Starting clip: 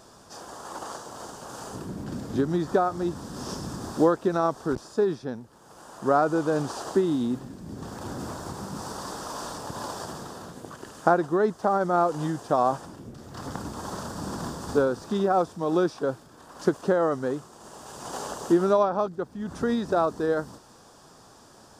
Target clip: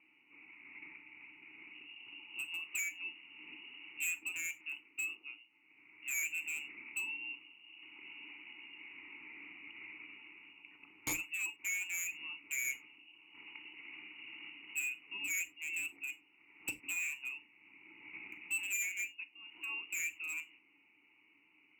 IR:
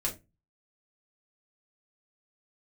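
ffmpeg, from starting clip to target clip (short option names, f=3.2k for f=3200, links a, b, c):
-filter_complex "[0:a]lowpass=f=2.6k:t=q:w=0.5098,lowpass=f=2.6k:t=q:w=0.6013,lowpass=f=2.6k:t=q:w=0.9,lowpass=f=2.6k:t=q:w=2.563,afreqshift=-3000,aeval=exprs='(mod(2.82*val(0)+1,2)-1)/2.82':c=same,asplit=3[a][b][c];[a]bandpass=f=300:t=q:w=8,volume=0dB[d];[b]bandpass=f=870:t=q:w=8,volume=-6dB[e];[c]bandpass=f=2.24k:t=q:w=8,volume=-9dB[f];[d][e][f]amix=inputs=3:normalize=0,volume=34dB,asoftclip=hard,volume=-34dB,equalizer=f=2.1k:t=o:w=2.5:g=-15,asplit=2[g][h];[1:a]atrim=start_sample=2205,atrim=end_sample=3969,asetrate=37926,aresample=44100[i];[h][i]afir=irnorm=-1:irlink=0,volume=-8.5dB[j];[g][j]amix=inputs=2:normalize=0,volume=10dB"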